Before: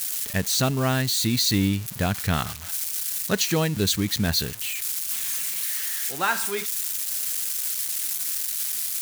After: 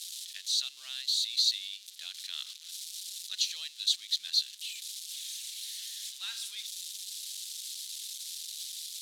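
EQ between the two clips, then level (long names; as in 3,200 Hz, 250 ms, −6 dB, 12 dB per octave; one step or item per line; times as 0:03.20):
four-pole ladder band-pass 4,100 Hz, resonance 60%
high-shelf EQ 4,500 Hz +6.5 dB
0.0 dB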